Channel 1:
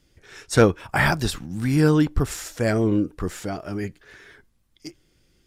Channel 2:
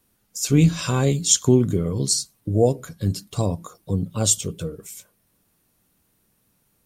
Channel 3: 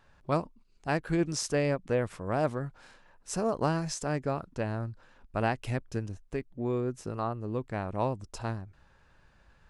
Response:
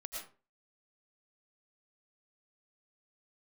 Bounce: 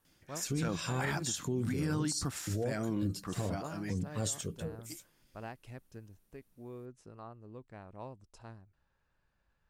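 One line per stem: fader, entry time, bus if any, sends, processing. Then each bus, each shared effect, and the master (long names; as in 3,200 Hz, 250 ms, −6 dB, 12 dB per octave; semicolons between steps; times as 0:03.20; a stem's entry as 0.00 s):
+0.5 dB, 0.05 s, no send, high-pass filter 130 Hz 12 dB per octave; parametric band 420 Hz −11 dB 0.46 octaves; automatic ducking −9 dB, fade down 0.40 s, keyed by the second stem
−10.5 dB, 0.00 s, no send, no processing
−16.0 dB, 0.00 s, muted 0:01.33–0:03.19, no send, no processing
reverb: not used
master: brickwall limiter −25 dBFS, peak gain reduction 13.5 dB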